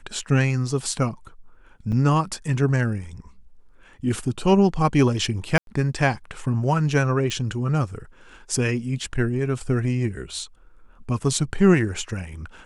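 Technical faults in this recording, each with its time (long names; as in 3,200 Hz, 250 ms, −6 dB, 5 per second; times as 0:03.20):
0:01.92–0:01.93: drop-out 6.4 ms
0:05.58–0:05.67: drop-out 92 ms
0:07.30: click −16 dBFS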